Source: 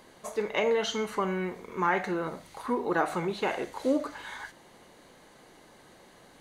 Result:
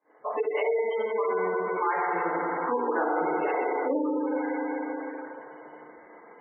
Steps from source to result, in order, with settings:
three-way crossover with the lows and the highs turned down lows −15 dB, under 320 Hz, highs −13 dB, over 3,200 Hz
feedback delay network reverb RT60 2.8 s, high-frequency decay 0.75×, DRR −7 dB
downward compressor 4 to 1, threshold −32 dBFS, peak gain reduction 14.5 dB
echo through a band-pass that steps 411 ms, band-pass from 430 Hz, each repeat 1.4 octaves, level −6.5 dB
low-pass that shuts in the quiet parts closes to 1,800 Hz, open at −25.5 dBFS
downward expander −42 dBFS
gate on every frequency bin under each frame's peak −20 dB strong
level +6 dB

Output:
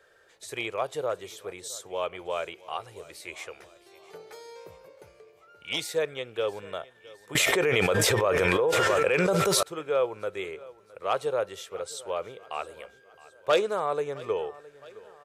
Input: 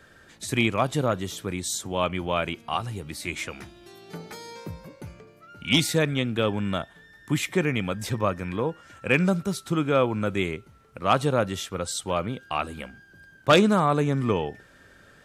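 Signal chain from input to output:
low shelf with overshoot 330 Hz −10.5 dB, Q 3
repeating echo 665 ms, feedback 52%, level −20.5 dB
0:07.35–0:09.63: envelope flattener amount 100%
level −8 dB

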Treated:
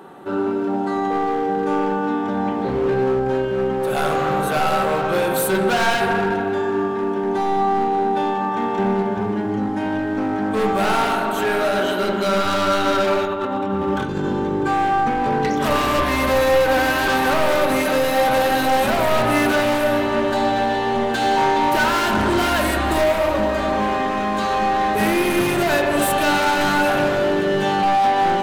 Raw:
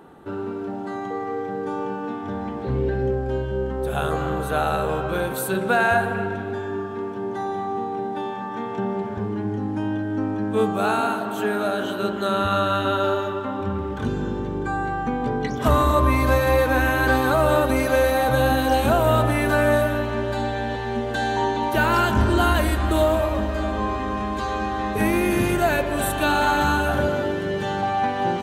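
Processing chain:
high-pass filter 270 Hz 6 dB per octave
0:13.25–0:14.24: compressor whose output falls as the input rises −31 dBFS, ratio −0.5
gain into a clipping stage and back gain 24.5 dB
convolution reverb RT60 0.95 s, pre-delay 5 ms, DRR 4 dB
level +6.5 dB

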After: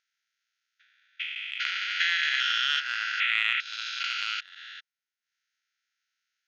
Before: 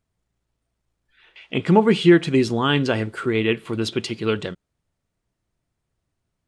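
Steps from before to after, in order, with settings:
spectrum averaged block by block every 400 ms
linear-phase brick-wall band-pass 1,300–6,800 Hz
transient designer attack +6 dB, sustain −10 dB
level +7.5 dB

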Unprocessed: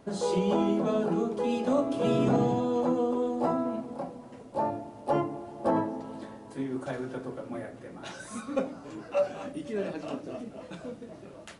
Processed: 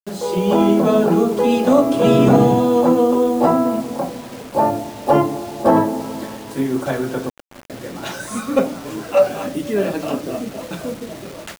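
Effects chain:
0:07.29–0:07.70: noise gate −32 dBFS, range −20 dB
automatic gain control gain up to 8.5 dB
bit reduction 7 bits
level +4.5 dB

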